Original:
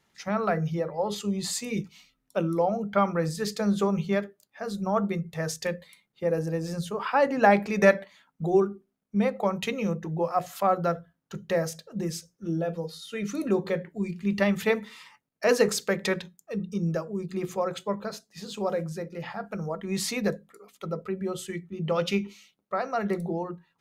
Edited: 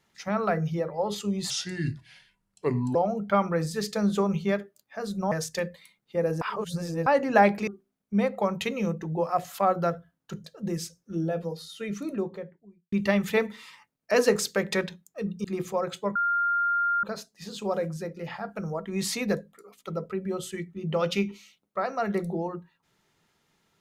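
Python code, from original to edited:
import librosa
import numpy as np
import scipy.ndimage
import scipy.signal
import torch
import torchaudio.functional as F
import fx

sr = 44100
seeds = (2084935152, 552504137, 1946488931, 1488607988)

y = fx.studio_fade_out(x, sr, start_s=12.92, length_s=1.33)
y = fx.edit(y, sr, fx.speed_span(start_s=1.5, length_s=1.09, speed=0.75),
    fx.cut(start_s=4.95, length_s=0.44),
    fx.reverse_span(start_s=6.49, length_s=0.65),
    fx.cut(start_s=7.75, length_s=0.94),
    fx.cut(start_s=11.46, length_s=0.31),
    fx.cut(start_s=16.77, length_s=0.51),
    fx.insert_tone(at_s=17.99, length_s=0.88, hz=1400.0, db=-22.0), tone=tone)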